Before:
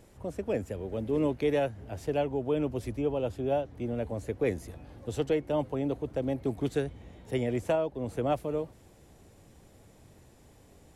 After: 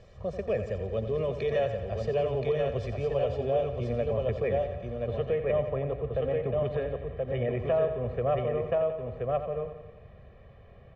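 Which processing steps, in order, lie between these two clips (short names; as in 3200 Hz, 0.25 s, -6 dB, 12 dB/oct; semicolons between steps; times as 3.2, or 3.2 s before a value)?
LPF 5200 Hz 24 dB/oct, from 4.13 s 2700 Hz; echo 1.026 s -4.5 dB; limiter -22 dBFS, peak gain reduction 7.5 dB; comb 1.7 ms, depth 91%; feedback echo 88 ms, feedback 59%, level -10 dB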